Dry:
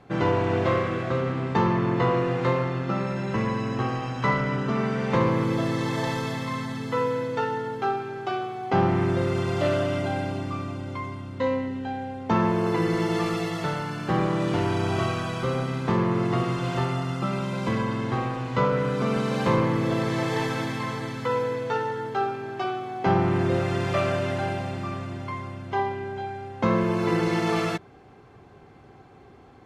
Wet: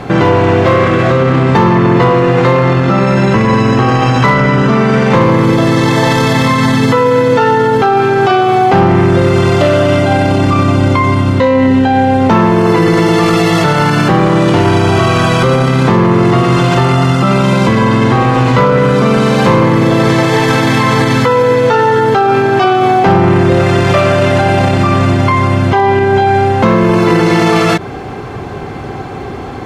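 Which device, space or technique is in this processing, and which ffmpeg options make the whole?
loud club master: -af "acompressor=threshold=-29dB:ratio=1.5,asoftclip=type=hard:threshold=-19.5dB,alimiter=level_in=28.5dB:limit=-1dB:release=50:level=0:latency=1,volume=-1dB"

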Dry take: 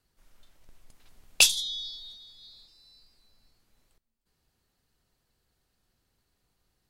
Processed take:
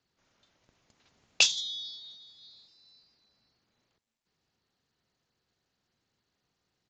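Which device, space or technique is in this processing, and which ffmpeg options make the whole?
Bluetooth headset: -af "highpass=110,aresample=16000,aresample=44100,volume=-2.5dB" -ar 16000 -c:a sbc -b:a 64k

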